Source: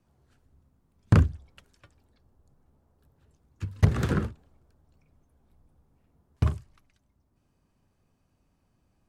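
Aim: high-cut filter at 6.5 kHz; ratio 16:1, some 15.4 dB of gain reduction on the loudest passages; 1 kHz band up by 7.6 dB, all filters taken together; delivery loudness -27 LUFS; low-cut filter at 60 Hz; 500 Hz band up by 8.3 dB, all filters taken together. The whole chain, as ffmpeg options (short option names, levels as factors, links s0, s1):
-af "highpass=60,lowpass=6500,equalizer=f=500:t=o:g=8.5,equalizer=f=1000:t=o:g=7.5,acompressor=threshold=0.0447:ratio=16,volume=2.99"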